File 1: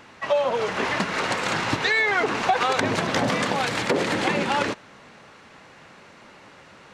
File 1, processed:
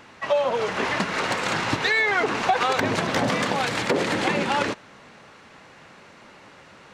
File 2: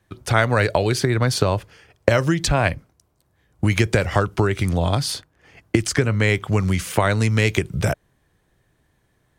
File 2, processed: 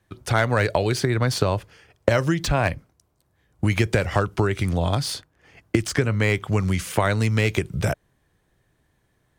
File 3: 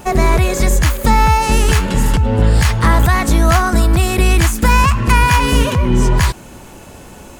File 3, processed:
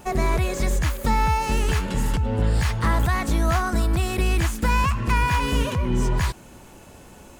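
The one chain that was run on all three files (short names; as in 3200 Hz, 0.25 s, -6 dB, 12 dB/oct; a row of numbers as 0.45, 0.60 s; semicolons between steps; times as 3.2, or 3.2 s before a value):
slew limiter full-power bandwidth 470 Hz; match loudness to -23 LUFS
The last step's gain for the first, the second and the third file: 0.0, -2.0, -9.5 dB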